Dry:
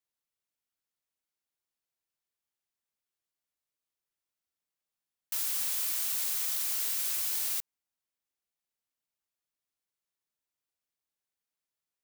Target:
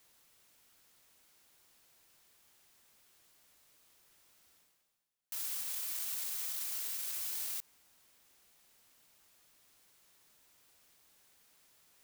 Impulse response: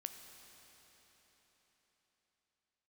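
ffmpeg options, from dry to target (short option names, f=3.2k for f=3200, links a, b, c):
-af "alimiter=level_in=5dB:limit=-24dB:level=0:latency=1:release=50,volume=-5dB,areverse,acompressor=mode=upward:threshold=-47dB:ratio=2.5,areverse"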